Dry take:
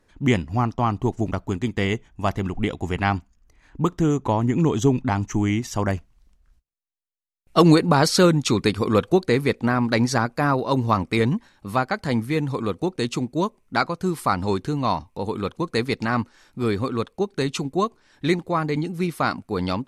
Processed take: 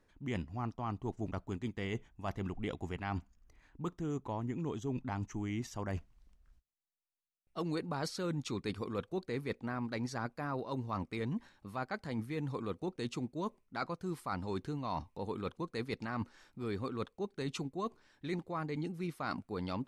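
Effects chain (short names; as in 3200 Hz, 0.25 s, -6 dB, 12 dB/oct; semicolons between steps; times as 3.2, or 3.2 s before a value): high shelf 5900 Hz -4.5 dB; reverse; compressor 6:1, threshold -29 dBFS, peak gain reduction 18 dB; reverse; gain -6 dB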